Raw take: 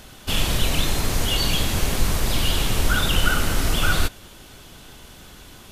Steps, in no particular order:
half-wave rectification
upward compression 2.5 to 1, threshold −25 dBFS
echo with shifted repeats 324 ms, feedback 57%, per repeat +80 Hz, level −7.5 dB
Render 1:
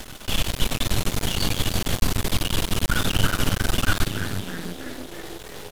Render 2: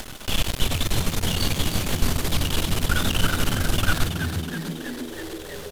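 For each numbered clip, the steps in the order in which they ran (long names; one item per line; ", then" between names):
echo with shifted repeats, then upward compression, then half-wave rectification
half-wave rectification, then echo with shifted repeats, then upward compression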